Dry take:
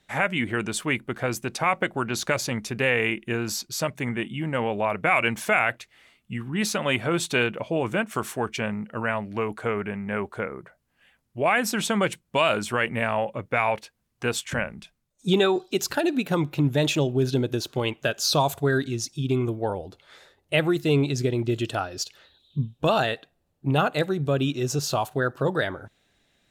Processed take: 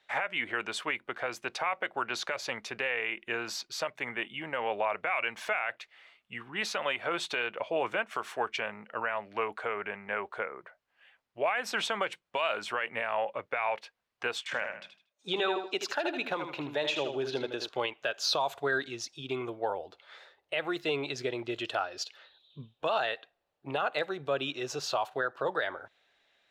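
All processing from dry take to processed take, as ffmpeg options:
ffmpeg -i in.wav -filter_complex "[0:a]asettb=1/sr,asplit=3[link_01][link_02][link_03];[link_01]atrim=end=14.384[link_04];[link_02]atrim=start=14.38:end=17.69,asetpts=PTS-STARTPTS,afade=type=in:duration=0.004:curve=qsin,afade=type=out:start_time=3.306:duration=0.004:curve=qsin,highpass=frequency=140:poles=1,highshelf=frequency=9600:gain=-8,aecho=1:1:78|156|234:0.398|0.107|0.029,atrim=end_sample=145971[link_05];[link_03]atrim=start=17.686[link_06];[link_04][link_05]acrossfade=duration=0.004:curve1=hsin:curve2=qsin[link_07];[link_07][link_06]acrossfade=duration=0.004:curve1=qsin:curve2=hsin,acrossover=split=460 4800:gain=0.0891 1 0.141[link_08][link_09][link_10];[link_08][link_09][link_10]amix=inputs=3:normalize=0,alimiter=limit=-19dB:level=0:latency=1:release=171" out.wav

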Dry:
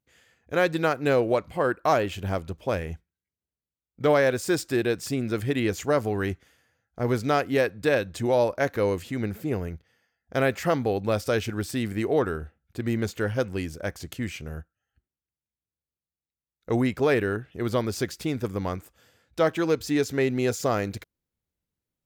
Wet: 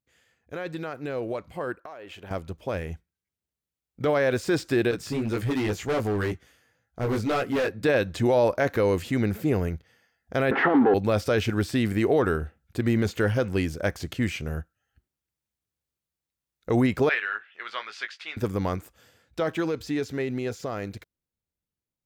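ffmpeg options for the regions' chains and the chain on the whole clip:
ffmpeg -i in.wav -filter_complex "[0:a]asettb=1/sr,asplit=3[link_01][link_02][link_03];[link_01]atrim=end=1.804[link_04];[link_02]atrim=start=1.8:end=2.31,asetpts=PTS-STARTPTS,afade=type=in:duration=0.004:curve=qsin,afade=type=out:start_time=0.506:duration=0.004:curve=qsin,bass=frequency=250:gain=-14,treble=frequency=4000:gain=-9,acompressor=threshold=-34dB:ratio=12:attack=3.2:release=140:knee=1:detection=peak[link_05];[link_03]atrim=start=2.306[link_06];[link_04][link_05]acrossfade=duration=0.004:curve1=hsin:curve2=qsin[link_07];[link_07][link_06]acrossfade=duration=0.004:curve1=qsin:curve2=hsin,asettb=1/sr,asplit=3[link_08][link_09][link_10];[link_08]atrim=end=4.914[link_11];[link_09]atrim=start=4.91:end=7.83,asetpts=PTS-STARTPTS,afade=type=in:duration=0.004:curve=qsin,afade=type=out:start_time=2.916:duration=0.004:curve=qsin,flanger=delay=16:depth=3.6:speed=2,asoftclip=type=hard:threshold=-27dB[link_12];[link_10]atrim=start=7.826[link_13];[link_11][link_12]acrossfade=duration=0.004:curve1=hsin:curve2=qsin[link_14];[link_14][link_13]acrossfade=duration=0.004:curve1=qsin:curve2=hsin,asettb=1/sr,asplit=3[link_15][link_16][link_17];[link_15]atrim=end=10.514[link_18];[link_16]atrim=start=10.51:end=10.94,asetpts=PTS-STARTPTS,afade=type=in:duration=0.004:curve=qsin,afade=type=out:start_time=0.426:duration=0.004:curve=qsin,asplit=2[link_19][link_20];[link_20]highpass=frequency=720:poles=1,volume=28dB,asoftclip=type=tanh:threshold=-10dB[link_21];[link_19][link_21]amix=inputs=2:normalize=0,lowpass=frequency=1400:poles=1,volume=-6dB,highpass=260,equalizer=frequency=270:width_type=q:width=4:gain=9,equalizer=frequency=390:width_type=q:width=4:gain=7,equalizer=frequency=580:width_type=q:width=4:gain=-9,equalizer=frequency=820:width_type=q:width=4:gain=6,equalizer=frequency=2400:width_type=q:width=4:gain=-10,lowpass=frequency=2600:width=0.5412,lowpass=frequency=2600:width=1.3066[link_22];[link_17]atrim=start=10.936[link_23];[link_18][link_22]acrossfade=duration=0.004:curve1=hsin:curve2=qsin[link_24];[link_24][link_23]acrossfade=duration=0.004:curve1=qsin:curve2=hsin,asettb=1/sr,asplit=3[link_25][link_26][link_27];[link_25]atrim=end=17.094[link_28];[link_26]atrim=start=17.09:end=18.37,asetpts=PTS-STARTPTS,afade=type=in:duration=0.004:curve=qsin,afade=type=out:start_time=1.276:duration=0.004:curve=qsin,asuperpass=centerf=2100:order=4:qfactor=0.94,asplit=2[link_29][link_30];[link_30]adelay=19,volume=-8dB[link_31];[link_29][link_31]amix=inputs=2:normalize=0,atrim=end_sample=56448[link_32];[link_27]atrim=start=18.366[link_33];[link_28][link_32]acrossfade=duration=0.004:curve1=hsin:curve2=qsin[link_34];[link_34][link_33]acrossfade=duration=0.004:curve1=qsin:curve2=hsin,acrossover=split=4600[link_35][link_36];[link_36]acompressor=threshold=-47dB:ratio=4:attack=1:release=60[link_37];[link_35][link_37]amix=inputs=2:normalize=0,alimiter=limit=-17.5dB:level=0:latency=1:release=25,dynaudnorm=framelen=530:gausssize=13:maxgain=10dB,volume=-5dB" out.wav

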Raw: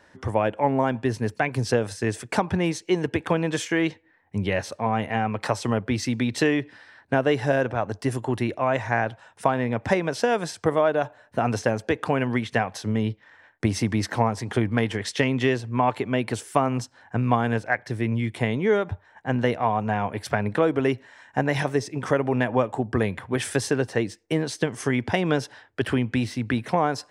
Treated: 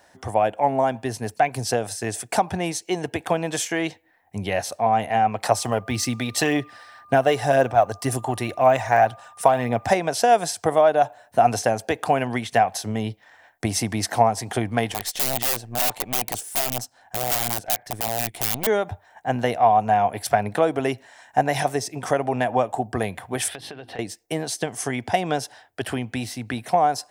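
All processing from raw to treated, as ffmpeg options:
ffmpeg -i in.wav -filter_complex "[0:a]asettb=1/sr,asplit=3[link_01][link_02][link_03];[link_01]atrim=end=5.514[link_04];[link_02]atrim=start=5.51:end=9.92,asetpts=PTS-STARTPTS,afade=type=in:duration=0.004:curve=qsin,afade=type=out:start_time=4.406:duration=0.004:curve=qsin,aphaser=in_gain=1:out_gain=1:delay=2.2:decay=0.33:speed=1.9:type=triangular,aeval=exprs='val(0)+0.00447*sin(2*PI*1200*n/s)':channel_layout=same[link_05];[link_03]atrim=start=9.916[link_06];[link_04][link_05]acrossfade=duration=0.004:curve1=hsin:curve2=qsin[link_07];[link_07][link_06]acrossfade=duration=0.004:curve1=qsin:curve2=hsin,asettb=1/sr,asplit=3[link_08][link_09][link_10];[link_08]atrim=end=14.924[link_11];[link_09]atrim=start=14.92:end=18.67,asetpts=PTS-STARTPTS,afade=type=in:duration=0.004:curve=qsin,afade=type=out:start_time=3.746:duration=0.004:curve=qsin,aeval=exprs='(mod(8.41*val(0)+1,2)-1)/8.41':channel_layout=same,aeval=exprs='(tanh(17.8*val(0)+0.75)-tanh(0.75))/17.8':channel_layout=same[link_12];[link_10]atrim=start=18.666[link_13];[link_11][link_12]acrossfade=duration=0.004:curve1=hsin:curve2=qsin[link_14];[link_14][link_13]acrossfade=duration=0.004:curve1=qsin:curve2=hsin,asettb=1/sr,asplit=3[link_15][link_16][link_17];[link_15]atrim=end=23.484[link_18];[link_16]atrim=start=23.48:end=23.99,asetpts=PTS-STARTPTS,afade=type=in:duration=0.004:curve=qsin,afade=type=out:start_time=0.506:duration=0.004:curve=qsin,highshelf=frequency=4900:width_type=q:width=3:gain=-12.5,bandreject=frequency=50:width_type=h:width=6,bandreject=frequency=100:width_type=h:width=6,bandreject=frequency=150:width_type=h:width=6,bandreject=frequency=200:width_type=h:width=6,bandreject=frequency=250:width_type=h:width=6,bandreject=frequency=300:width_type=h:width=6,bandreject=frequency=350:width_type=h:width=6,acompressor=threshold=-32dB:ratio=8:attack=3.2:release=140:knee=1:detection=peak[link_19];[link_17]atrim=start=23.986[link_20];[link_18][link_19]acrossfade=duration=0.004:curve1=hsin:curve2=qsin[link_21];[link_21][link_20]acrossfade=duration=0.004:curve1=qsin:curve2=hsin,aemphasis=mode=production:type=75fm,dynaudnorm=framelen=520:gausssize=21:maxgain=4dB,equalizer=frequency=720:width_type=o:width=0.45:gain=13.5,volume=-3.5dB" out.wav

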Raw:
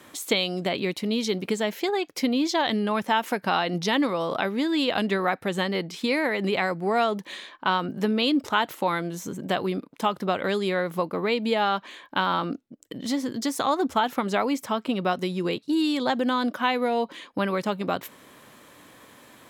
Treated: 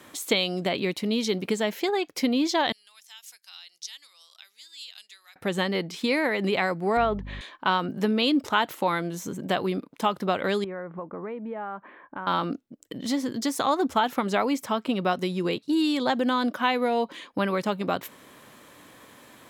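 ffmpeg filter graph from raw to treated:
ffmpeg -i in.wav -filter_complex "[0:a]asettb=1/sr,asplit=3[link_01][link_02][link_03];[link_01]atrim=end=2.724[link_04];[link_02]atrim=start=2.72:end=5.36,asetpts=PTS-STARTPTS,afade=type=in:duration=0.004:curve=qsin,afade=type=out:start_time=2.636:duration=0.004:curve=qsin,bandpass=frequency=6000:width_type=q:width=1.3,aderivative[link_05];[link_03]atrim=start=5.356[link_06];[link_04][link_05]acrossfade=duration=0.004:curve1=hsin:curve2=qsin[link_07];[link_07][link_06]acrossfade=duration=0.004:curve1=qsin:curve2=hsin,asettb=1/sr,asplit=3[link_08][link_09][link_10];[link_08]atrim=end=6.974[link_11];[link_09]atrim=start=6.97:end=7.41,asetpts=PTS-STARTPTS,afade=type=in:duration=0.004:curve=qsin,afade=type=out:start_time=0.436:duration=0.004:curve=qsin,agate=range=-33dB:threshold=-43dB:ratio=3:release=100:detection=peak,highpass=130,lowpass=2400,aeval=exprs='val(0)+0.0158*(sin(2*PI*50*n/s)+sin(2*PI*2*50*n/s)/2+sin(2*PI*3*50*n/s)/3+sin(2*PI*4*50*n/s)/4+sin(2*PI*5*50*n/s)/5)':channel_layout=same[link_12];[link_10]atrim=start=7.406[link_13];[link_11][link_12]acrossfade=duration=0.004:curve1=hsin:curve2=qsin[link_14];[link_14][link_13]acrossfade=duration=0.004:curve1=qsin:curve2=hsin,asettb=1/sr,asplit=3[link_15][link_16][link_17];[link_15]atrim=end=10.644[link_18];[link_16]atrim=start=10.64:end=12.27,asetpts=PTS-STARTPTS,afade=type=in:duration=0.004:curve=qsin,afade=type=out:start_time=1.626:duration=0.004:curve=qsin,lowpass=frequency=1700:width=0.5412,lowpass=frequency=1700:width=1.3066,acompressor=threshold=-39dB:ratio=2:attack=3.2:release=140:knee=1:detection=peak[link_19];[link_17]atrim=start=12.266[link_20];[link_18][link_19]acrossfade=duration=0.004:curve1=hsin:curve2=qsin[link_21];[link_21][link_20]acrossfade=duration=0.004:curve1=qsin:curve2=hsin" out.wav

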